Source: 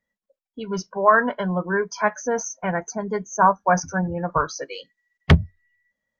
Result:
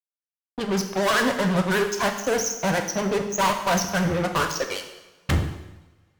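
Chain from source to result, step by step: vibrato 12 Hz 99 cents; fuzz box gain 30 dB, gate -34 dBFS; two-slope reverb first 0.93 s, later 3 s, from -26 dB, DRR 4.5 dB; gain -6.5 dB

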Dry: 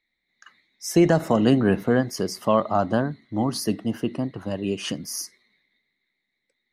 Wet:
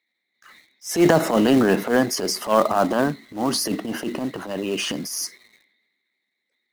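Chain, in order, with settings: HPF 250 Hz 12 dB/oct; transient shaper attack -12 dB, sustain +6 dB; in parallel at -4 dB: companded quantiser 4-bit; on the sum: gain +1 dB

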